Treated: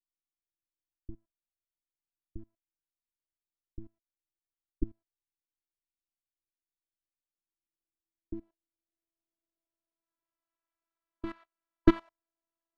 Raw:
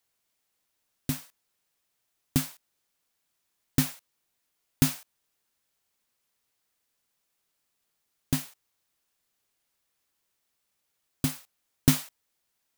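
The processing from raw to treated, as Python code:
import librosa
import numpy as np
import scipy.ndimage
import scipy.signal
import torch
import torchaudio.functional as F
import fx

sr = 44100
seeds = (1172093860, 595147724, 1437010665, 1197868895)

y = fx.spec_box(x, sr, start_s=10.03, length_s=1.96, low_hz=1000.0, high_hz=4700.0, gain_db=8)
y = fx.level_steps(y, sr, step_db=18)
y = fx.robotise(y, sr, hz=332.0)
y = fx.filter_sweep_lowpass(y, sr, from_hz=150.0, to_hz=990.0, start_s=7.2, end_s=10.57, q=0.91)
y = y * librosa.db_to_amplitude(7.5)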